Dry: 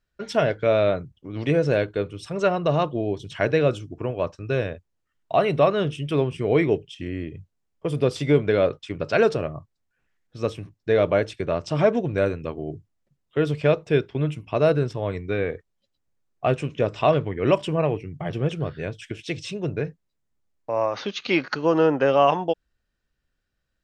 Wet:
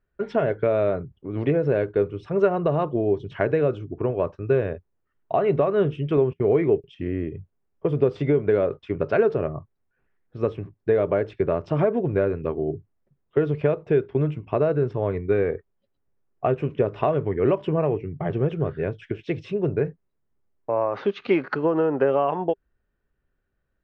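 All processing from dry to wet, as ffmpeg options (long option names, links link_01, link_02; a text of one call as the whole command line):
ffmpeg -i in.wav -filter_complex "[0:a]asettb=1/sr,asplit=3[link_01][link_02][link_03];[link_01]atrim=end=6.174[link_04];[link_02]atrim=start=6.17:end=6.84,asetpts=PTS-STARTPTS,afade=type=in:duration=0.004:curve=qsin,afade=type=out:start_time=0.666:duration=0.004:curve=qsin,lowpass=5000,agate=range=-30dB:threshold=-33dB:ratio=16:release=100:detection=peak[link_05];[link_03]atrim=start=6.836[link_06];[link_04][link_05]acrossfade=duration=0.004:curve1=hsin:curve2=qsin[link_07];[link_07][link_06]acrossfade=duration=0.004:curve1=qsin:curve2=hsin,lowpass=1700,acompressor=threshold=-21dB:ratio=6,equalizer=frequency=400:width_type=o:width=0.24:gain=7,volume=2.5dB" out.wav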